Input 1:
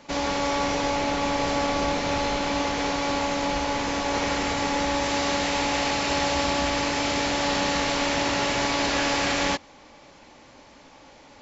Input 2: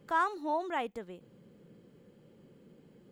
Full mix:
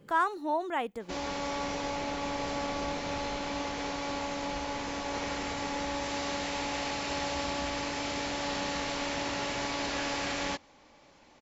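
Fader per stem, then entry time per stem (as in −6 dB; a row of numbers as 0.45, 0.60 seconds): −9.0, +2.0 decibels; 1.00, 0.00 seconds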